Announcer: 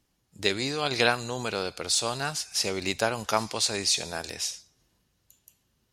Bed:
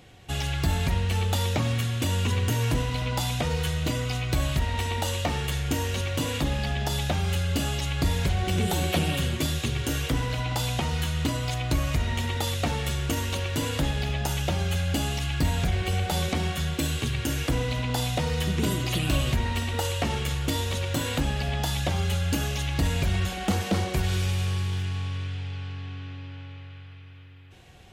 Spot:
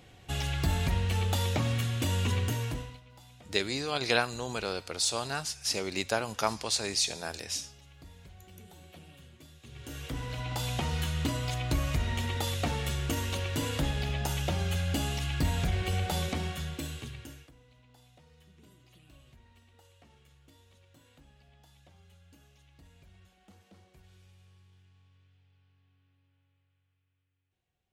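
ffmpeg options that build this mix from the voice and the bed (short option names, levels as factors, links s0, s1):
-filter_complex "[0:a]adelay=3100,volume=0.668[s0];[1:a]volume=9.44,afade=t=out:st=2.35:d=0.66:silence=0.0668344,afade=t=in:st=9.61:d=1.25:silence=0.0707946,afade=t=out:st=16.05:d=1.46:silence=0.0354813[s1];[s0][s1]amix=inputs=2:normalize=0"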